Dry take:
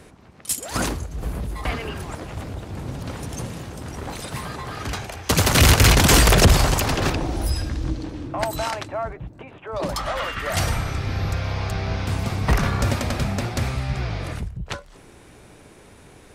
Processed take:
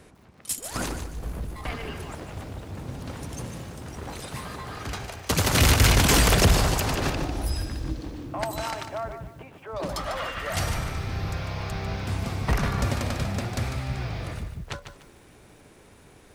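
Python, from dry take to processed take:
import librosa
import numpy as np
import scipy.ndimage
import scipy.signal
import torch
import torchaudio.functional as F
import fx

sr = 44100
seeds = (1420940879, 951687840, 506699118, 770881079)

y = fx.halfwave_gain(x, sr, db=-3.0, at=(0.58, 1.86))
y = fx.echo_crushed(y, sr, ms=148, feedback_pct=35, bits=8, wet_db=-8.5)
y = y * librosa.db_to_amplitude(-5.0)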